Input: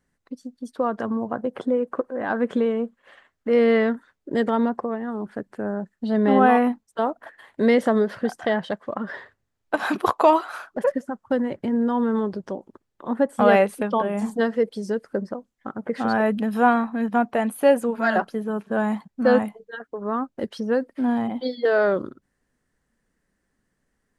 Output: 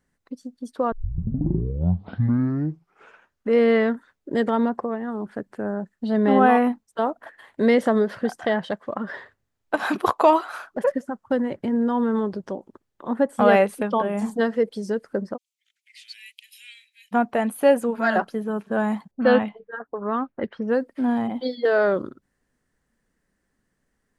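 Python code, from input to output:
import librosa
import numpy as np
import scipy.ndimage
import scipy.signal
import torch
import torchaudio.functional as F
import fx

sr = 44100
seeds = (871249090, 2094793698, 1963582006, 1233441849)

y = fx.steep_highpass(x, sr, hz=2200.0, slope=72, at=(15.36, 17.11), fade=0.02)
y = fx.envelope_lowpass(y, sr, base_hz=580.0, top_hz=3300.0, q=2.3, full_db=-22.5, direction='up', at=(19.11, 20.68))
y = fx.edit(y, sr, fx.tape_start(start_s=0.92, length_s=2.67), tone=tone)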